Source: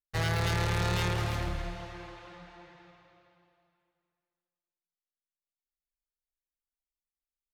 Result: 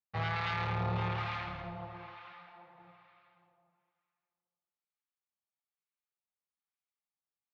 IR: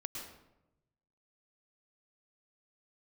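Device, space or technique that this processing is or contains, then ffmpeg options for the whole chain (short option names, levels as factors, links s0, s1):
guitar amplifier with harmonic tremolo: -filter_complex "[0:a]asettb=1/sr,asplit=3[s0][s1][s2];[s0]atrim=end=2.324[s3];[s1]atrim=start=2.32:end=2.78,asetpts=PTS-STARTPTS,afade=t=in:d=0.004:c=qsin,afade=t=out:st=0.456:d=0.004:c=qsin,lowshelf=f=340:g=-9.5[s4];[s2]atrim=start=2.776[s5];[s3][s4]acrossfade=d=0.004:c1=hsin:c2=qsin[s6];[s6][s5]acrossfade=d=0.004:c1=qsin:c2=hsin,acrossover=split=1000[s7][s8];[s7]aeval=exprs='val(0)*(1-0.7/2+0.7/2*cos(2*PI*1.1*n/s))':c=same[s9];[s8]aeval=exprs='val(0)*(1-0.7/2-0.7/2*cos(2*PI*1.1*n/s))':c=same[s10];[s9][s10]amix=inputs=2:normalize=0,asoftclip=type=tanh:threshold=0.0473,highpass=97,equalizer=f=110:t=q:w=4:g=4,equalizer=f=200:t=q:w=4:g=6,equalizer=f=320:t=q:w=4:g=-6,equalizer=f=810:t=q:w=4:g=8,equalizer=f=1200:t=q:w=4:g=8,equalizer=f=2300:t=q:w=4:g=5,lowpass=f=4000:w=0.5412,lowpass=f=4000:w=1.3066,volume=0.794"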